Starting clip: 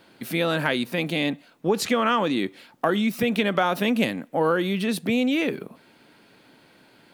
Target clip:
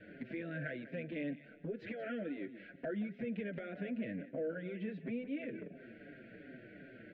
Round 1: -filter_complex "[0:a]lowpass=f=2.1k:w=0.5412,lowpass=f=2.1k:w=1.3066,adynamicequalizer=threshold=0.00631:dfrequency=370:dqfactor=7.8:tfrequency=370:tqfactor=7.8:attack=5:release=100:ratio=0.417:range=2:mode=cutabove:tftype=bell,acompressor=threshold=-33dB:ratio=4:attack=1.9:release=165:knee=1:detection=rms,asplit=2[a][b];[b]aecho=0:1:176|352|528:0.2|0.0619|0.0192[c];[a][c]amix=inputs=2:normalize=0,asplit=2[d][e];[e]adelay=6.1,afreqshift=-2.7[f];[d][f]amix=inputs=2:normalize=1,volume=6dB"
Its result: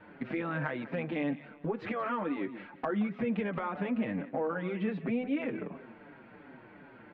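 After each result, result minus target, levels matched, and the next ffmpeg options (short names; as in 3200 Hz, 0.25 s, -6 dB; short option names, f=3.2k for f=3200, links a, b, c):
1000 Hz band +10.5 dB; compressor: peak gain reduction -7 dB
-filter_complex "[0:a]lowpass=f=2.1k:w=0.5412,lowpass=f=2.1k:w=1.3066,adynamicequalizer=threshold=0.00631:dfrequency=370:dqfactor=7.8:tfrequency=370:tqfactor=7.8:attack=5:release=100:ratio=0.417:range=2:mode=cutabove:tftype=bell,asuperstop=centerf=1000:order=12:qfactor=1.3,acompressor=threshold=-33dB:ratio=4:attack=1.9:release=165:knee=1:detection=rms,asplit=2[a][b];[b]aecho=0:1:176|352|528:0.2|0.0619|0.0192[c];[a][c]amix=inputs=2:normalize=0,asplit=2[d][e];[e]adelay=6.1,afreqshift=-2.7[f];[d][f]amix=inputs=2:normalize=1,volume=6dB"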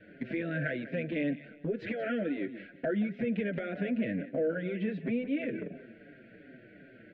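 compressor: peak gain reduction -8.5 dB
-filter_complex "[0:a]lowpass=f=2.1k:w=0.5412,lowpass=f=2.1k:w=1.3066,adynamicequalizer=threshold=0.00631:dfrequency=370:dqfactor=7.8:tfrequency=370:tqfactor=7.8:attack=5:release=100:ratio=0.417:range=2:mode=cutabove:tftype=bell,asuperstop=centerf=1000:order=12:qfactor=1.3,acompressor=threshold=-44dB:ratio=4:attack=1.9:release=165:knee=1:detection=rms,asplit=2[a][b];[b]aecho=0:1:176|352|528:0.2|0.0619|0.0192[c];[a][c]amix=inputs=2:normalize=0,asplit=2[d][e];[e]adelay=6.1,afreqshift=-2.7[f];[d][f]amix=inputs=2:normalize=1,volume=6dB"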